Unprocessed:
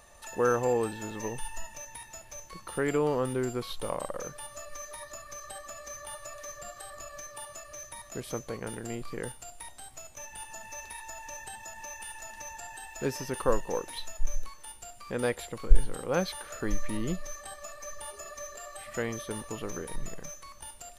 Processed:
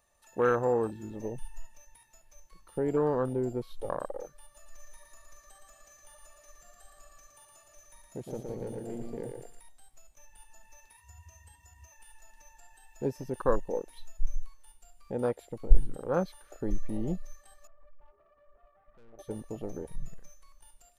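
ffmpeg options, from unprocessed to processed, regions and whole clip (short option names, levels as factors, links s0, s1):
-filter_complex "[0:a]asettb=1/sr,asplit=3[s0][s1][s2];[s0]atrim=end=4.434[s3];[s1]atrim=start=4.43:end=9.6,asetpts=PTS-STARTPTS,afade=t=in:d=0.004:c=qsin,afade=t=out:st=5.166:d=0.004:c=qsin,aeval=exprs='clip(val(0),-1,0.0224)':c=same,aecho=1:1:115|230|345|460|575|690|805|920:0.631|0.36|0.205|0.117|0.0666|0.038|0.0216|0.0123,atrim=end_sample=227997[s4];[s2]atrim=start=9.596[s5];[s3][s4]acrossfade=d=0.004:c1=hsin:c2=qsin[s6];[s6][s5]acrossfade=d=0.004:c1=qsin:c2=hsin,asettb=1/sr,asplit=3[s7][s8][s9];[s7]atrim=end=10.974[s10];[s8]atrim=start=10.97:end=11.92,asetpts=PTS-STARTPTS,afade=t=in:d=0.004:c=qsin,afade=t=out:st=0.946:d=0.004:c=qsin,equalizer=f=790:w=0.5:g=-3,bandreject=f=3800:w=11,afreqshift=69[s11];[s9]atrim=start=11.916[s12];[s10][s11]acrossfade=d=0.004:c1=hsin:c2=qsin[s13];[s13][s12]acrossfade=d=0.004:c1=qsin:c2=hsin,asettb=1/sr,asplit=3[s14][s15][s16];[s14]atrim=end=17.674[s17];[s15]atrim=start=17.67:end=19.19,asetpts=PTS-STARTPTS,afade=t=in:d=0.004:c=qsin,afade=t=out:st=1.516:d=0.004:c=qsin,lowpass=f=1300:w=0.5412,lowpass=f=1300:w=1.3066,aeval=exprs='(tanh(112*val(0)+0.15)-tanh(0.15))/112':c=same[s18];[s16]atrim=start=19.186[s19];[s17][s18]acrossfade=d=0.004:c1=hsin:c2=qsin[s20];[s20][s19]acrossfade=d=0.004:c1=qsin:c2=hsin,afwtdn=0.0282,highshelf=f=11000:g=6"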